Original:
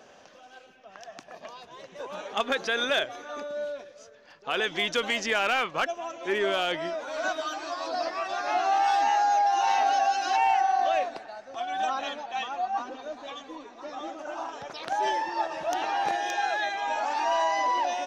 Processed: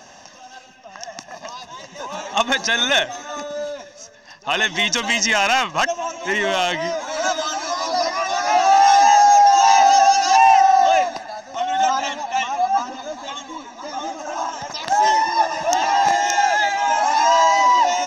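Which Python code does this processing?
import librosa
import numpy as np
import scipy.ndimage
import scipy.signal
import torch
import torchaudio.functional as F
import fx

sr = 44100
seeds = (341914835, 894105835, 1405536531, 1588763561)

y = fx.peak_eq(x, sr, hz=5900.0, db=10.0, octaves=0.51)
y = y + 0.65 * np.pad(y, (int(1.1 * sr / 1000.0), 0))[:len(y)]
y = y * librosa.db_to_amplitude(7.5)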